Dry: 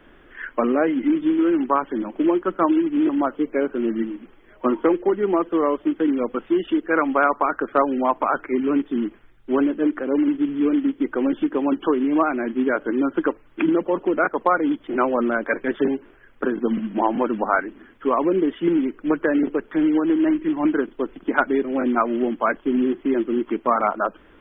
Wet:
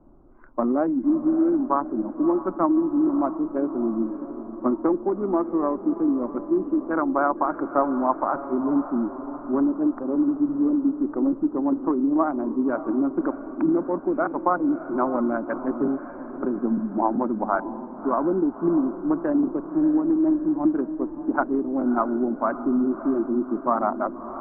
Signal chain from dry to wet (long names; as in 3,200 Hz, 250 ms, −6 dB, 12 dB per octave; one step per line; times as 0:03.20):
adaptive Wiener filter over 25 samples
low-pass filter 1,200 Hz 24 dB per octave
parametric band 460 Hz −12 dB 0.33 octaves
feedback delay with all-pass diffusion 613 ms, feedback 56%, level −12 dB